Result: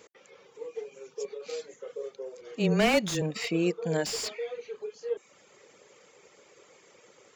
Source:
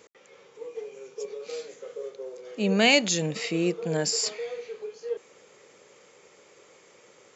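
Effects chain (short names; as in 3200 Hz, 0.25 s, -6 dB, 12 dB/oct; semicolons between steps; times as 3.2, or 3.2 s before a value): 2.41–3.22 frequency shift -18 Hz; reverb removal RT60 0.68 s; slew limiter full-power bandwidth 130 Hz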